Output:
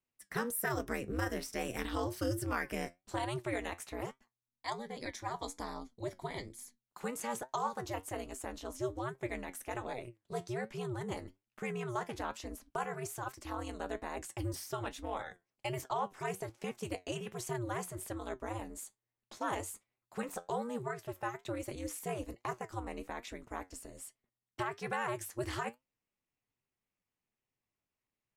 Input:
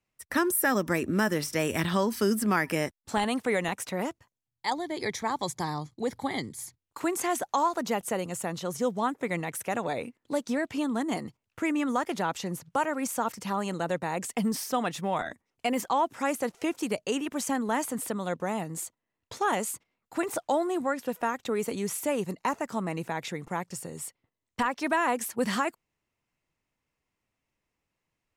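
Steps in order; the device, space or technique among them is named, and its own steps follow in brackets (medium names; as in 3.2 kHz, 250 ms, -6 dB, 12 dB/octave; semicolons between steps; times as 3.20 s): alien voice (ring modulator 120 Hz; flange 1.2 Hz, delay 7.4 ms, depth 4.3 ms, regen +68%); trim -2.5 dB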